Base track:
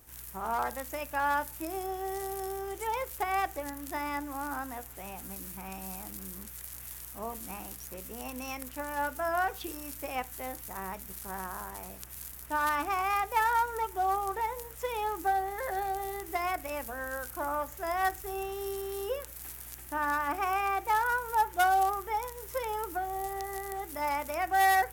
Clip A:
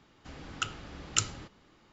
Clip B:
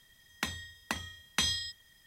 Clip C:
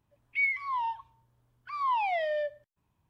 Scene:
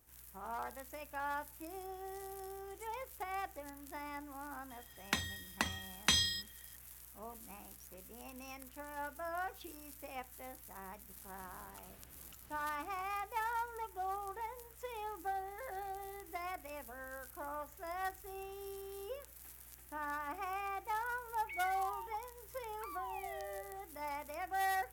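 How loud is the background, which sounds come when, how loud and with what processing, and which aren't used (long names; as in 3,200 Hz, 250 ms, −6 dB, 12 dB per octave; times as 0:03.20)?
base track −11 dB
0:04.70: mix in B −0.5 dB
0:11.16: mix in A −7 dB + downward compressor, threshold −52 dBFS
0:21.14: mix in C −7 dB + downward compressor, threshold −38 dBFS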